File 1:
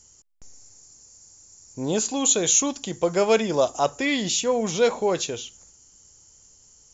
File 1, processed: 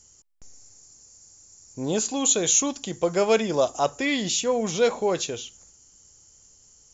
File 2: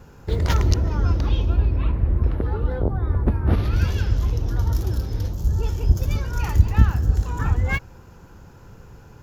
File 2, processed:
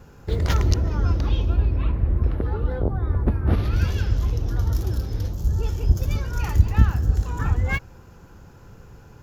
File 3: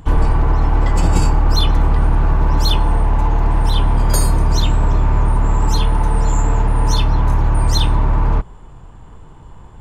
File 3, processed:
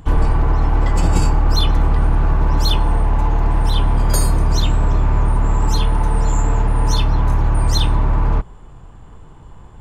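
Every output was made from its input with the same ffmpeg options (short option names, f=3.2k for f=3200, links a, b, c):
-af "bandreject=f=930:w=23,volume=-1dB"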